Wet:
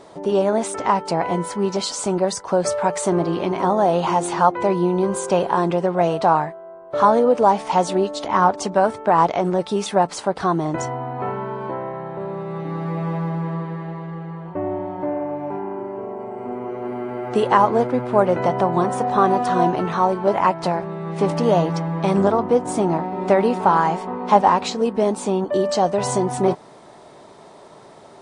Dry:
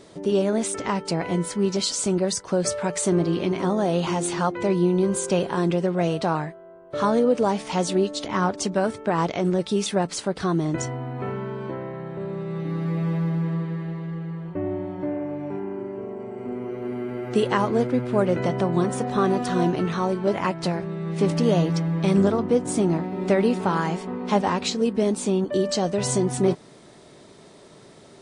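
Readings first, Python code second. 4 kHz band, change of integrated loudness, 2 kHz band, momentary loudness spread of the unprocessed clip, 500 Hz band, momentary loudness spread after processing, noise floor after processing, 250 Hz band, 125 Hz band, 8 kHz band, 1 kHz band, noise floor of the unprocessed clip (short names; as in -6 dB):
-0.5 dB, +4.0 dB, +3.0 dB, 10 LU, +4.0 dB, 12 LU, -44 dBFS, 0.0 dB, -1.0 dB, -1.5 dB, +10.0 dB, -48 dBFS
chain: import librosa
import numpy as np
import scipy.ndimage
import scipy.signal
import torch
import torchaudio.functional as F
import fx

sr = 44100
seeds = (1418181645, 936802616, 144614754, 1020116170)

y = fx.peak_eq(x, sr, hz=860.0, db=13.0, octaves=1.4)
y = y * 10.0 ** (-1.5 / 20.0)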